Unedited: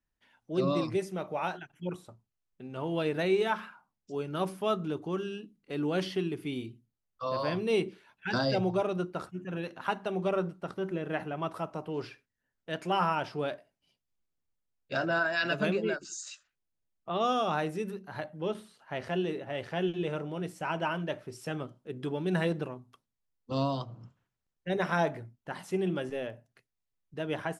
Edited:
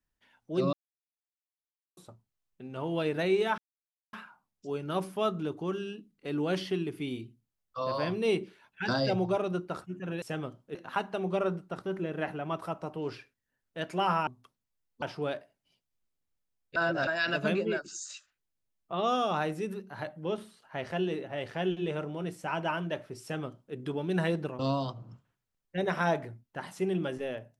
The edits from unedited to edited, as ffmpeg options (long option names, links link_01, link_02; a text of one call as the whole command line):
ffmpeg -i in.wav -filter_complex "[0:a]asplit=11[link_01][link_02][link_03][link_04][link_05][link_06][link_07][link_08][link_09][link_10][link_11];[link_01]atrim=end=0.73,asetpts=PTS-STARTPTS,afade=type=out:start_time=0.726:duration=0.004:curve=hsin[link_12];[link_02]atrim=start=0.73:end=1.97,asetpts=PTS-STARTPTS,volume=0[link_13];[link_03]atrim=start=1.97:end=3.58,asetpts=PTS-STARTPTS,afade=type=in:duration=0.004:curve=hsin,afade=type=out:start_time=1.606:duration=0.004:curve=hsin,apad=pad_dur=0.55[link_14];[link_04]atrim=start=3.58:end=9.672,asetpts=PTS-STARTPTS,afade=type=in:duration=0.004:curve=hsin[link_15];[link_05]atrim=start=21.388:end=21.922[link_16];[link_06]atrim=start=9.668:end=13.192[link_17];[link_07]atrim=start=22.758:end=23.512[link_18];[link_08]atrim=start=13.188:end=14.932[link_19];[link_09]atrim=start=14.928:end=15.242,asetpts=PTS-STARTPTS,areverse[link_20];[link_10]atrim=start=15.238:end=22.762[link_21];[link_11]atrim=start=23.508[link_22];[link_12][link_13][link_14][link_15]concat=n=4:v=0:a=1[link_23];[link_23][link_16]acrossfade=duration=0.004:curve1=hsin:curve2=hsin[link_24];[link_24][link_17]acrossfade=duration=0.004:curve1=hsin:curve2=hsin[link_25];[link_25][link_18]acrossfade=duration=0.004:curve1=hsin:curve2=hsin[link_26];[link_26][link_19]acrossfade=duration=0.004:curve1=hsin:curve2=hsin[link_27];[link_27][link_20]acrossfade=duration=0.004:curve1=hsin:curve2=hsin[link_28];[link_28][link_21]acrossfade=duration=0.004:curve1=hsin:curve2=hsin[link_29];[link_29][link_22]acrossfade=duration=0.004:curve1=hsin:curve2=hsin" out.wav